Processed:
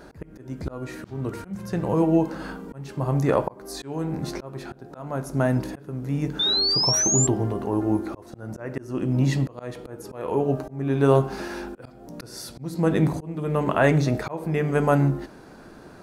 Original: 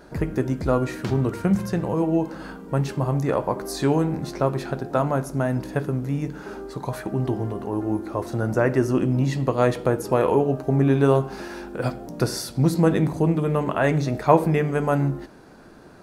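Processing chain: painted sound rise, 6.39–7.27 s, 3.5–7.5 kHz -24 dBFS; slow attack 512 ms; trim +2 dB

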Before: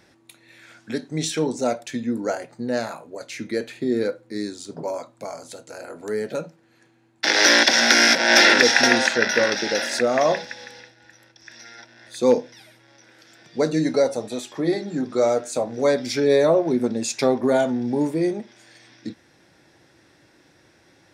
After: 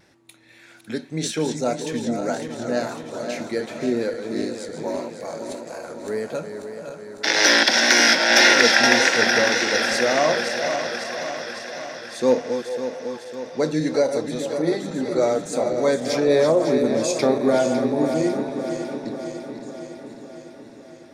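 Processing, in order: backward echo that repeats 276 ms, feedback 78%, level -8 dB; repeats whose band climbs or falls 431 ms, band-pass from 610 Hz, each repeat 0.7 oct, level -10 dB; vibrato 1.8 Hz 38 cents; trim -1 dB

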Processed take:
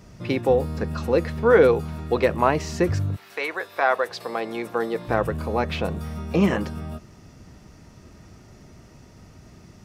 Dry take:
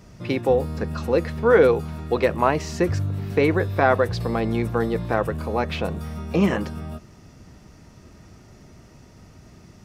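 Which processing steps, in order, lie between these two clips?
3.15–5.07 s: high-pass 1.1 kHz -> 280 Hz 12 dB/octave

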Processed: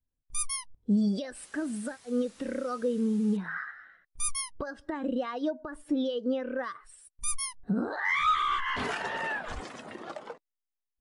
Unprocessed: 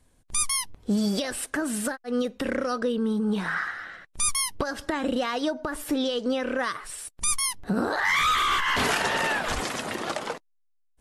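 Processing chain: 1.35–3.37 s: word length cut 6-bit, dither triangular; brick-wall FIR low-pass 11 kHz; spectral contrast expander 1.5:1; trim -4.5 dB

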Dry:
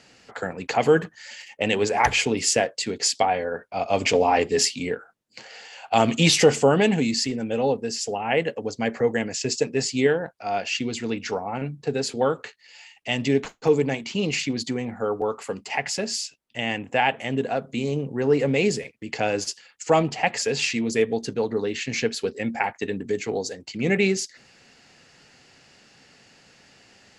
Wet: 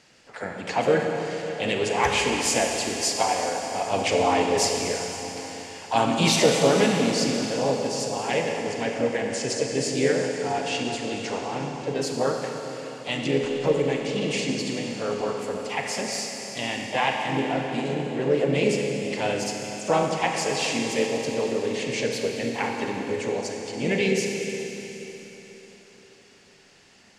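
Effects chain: Schroeder reverb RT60 3.9 s, combs from 30 ms, DRR 1 dB; harmony voices +3 st -7 dB, +5 st -13 dB; trim -4.5 dB

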